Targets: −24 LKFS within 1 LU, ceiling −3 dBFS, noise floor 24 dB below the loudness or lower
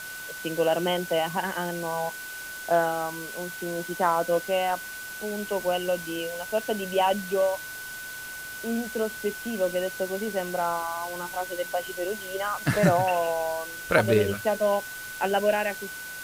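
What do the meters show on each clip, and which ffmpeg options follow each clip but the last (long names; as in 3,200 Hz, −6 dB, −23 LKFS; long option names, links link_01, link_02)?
interfering tone 1,500 Hz; level of the tone −37 dBFS; background noise floor −38 dBFS; target noise floor −52 dBFS; integrated loudness −27.5 LKFS; sample peak −6.5 dBFS; target loudness −24.0 LKFS
→ -af "bandreject=frequency=1500:width=30"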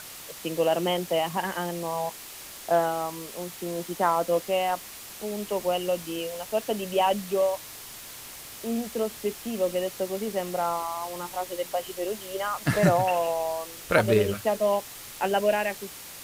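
interfering tone none found; background noise floor −43 dBFS; target noise floor −52 dBFS
→ -af "afftdn=noise_reduction=9:noise_floor=-43"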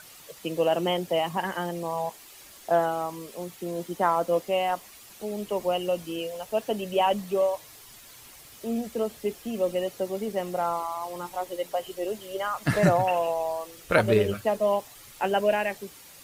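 background noise floor −49 dBFS; target noise floor −52 dBFS
→ -af "afftdn=noise_reduction=6:noise_floor=-49"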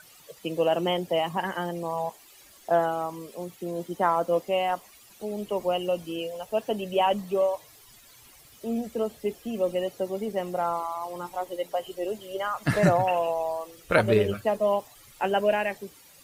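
background noise floor −53 dBFS; integrated loudness −27.5 LKFS; sample peak −7.0 dBFS; target loudness −24.0 LKFS
→ -af "volume=3.5dB"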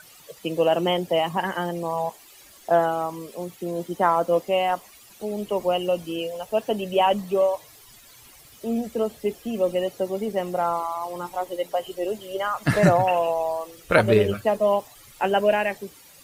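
integrated loudness −24.0 LKFS; sample peak −3.5 dBFS; background noise floor −50 dBFS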